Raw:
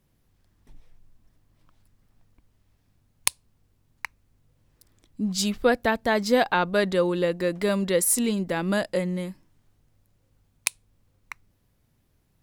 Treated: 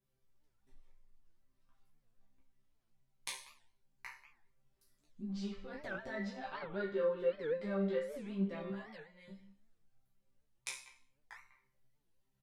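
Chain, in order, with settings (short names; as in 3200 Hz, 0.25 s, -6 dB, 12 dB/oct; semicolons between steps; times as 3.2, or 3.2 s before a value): 5.3–6.76 negative-ratio compressor -26 dBFS, ratio -1; treble ducked by the level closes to 2000 Hz, closed at -21.5 dBFS; 8.7–9.28 passive tone stack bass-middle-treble 10-0-10; resonator bank C3 fifth, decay 0.48 s; speakerphone echo 0.19 s, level -15 dB; chorus voices 6, 0.93 Hz, delay 16 ms, depth 3 ms; reverb RT60 0.65 s, pre-delay 3 ms, DRR 18.5 dB; record warp 78 rpm, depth 250 cents; gain +5 dB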